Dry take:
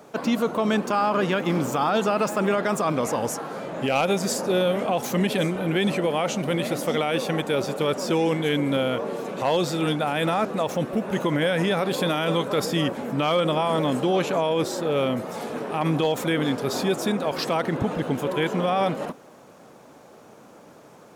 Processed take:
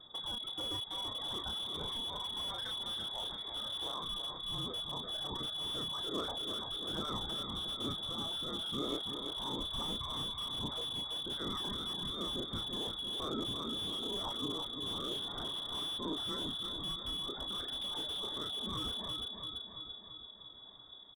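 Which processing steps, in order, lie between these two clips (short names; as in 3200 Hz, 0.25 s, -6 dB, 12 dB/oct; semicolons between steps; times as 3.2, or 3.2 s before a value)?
CVSD 64 kbps; notches 60/120/180 Hz; reverb removal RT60 1.2 s; elliptic band-stop 200–2700 Hz, stop band 50 dB; compressor 10:1, threshold -34 dBFS, peak gain reduction 13 dB; limiter -31.5 dBFS, peak gain reduction 7 dB; vocal rider within 4 dB 0.5 s; rotary speaker horn 1.1 Hz; doubler 32 ms -5 dB; feedback echo 0.337 s, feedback 60%, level -7 dB; inverted band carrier 3600 Hz; slew limiter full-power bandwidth 25 Hz; gain +4.5 dB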